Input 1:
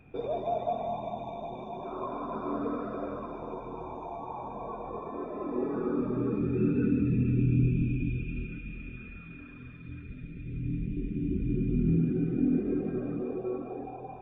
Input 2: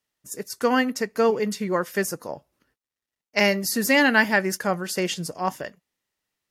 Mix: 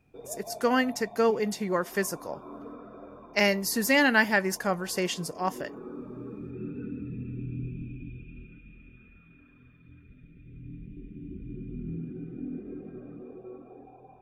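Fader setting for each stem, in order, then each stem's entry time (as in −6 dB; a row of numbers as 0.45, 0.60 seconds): −10.5, −3.5 decibels; 0.00, 0.00 seconds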